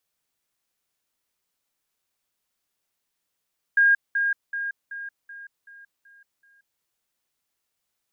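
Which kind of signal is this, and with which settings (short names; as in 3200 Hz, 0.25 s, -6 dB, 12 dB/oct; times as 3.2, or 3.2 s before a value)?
level ladder 1620 Hz -14 dBFS, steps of -6 dB, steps 8, 0.18 s 0.20 s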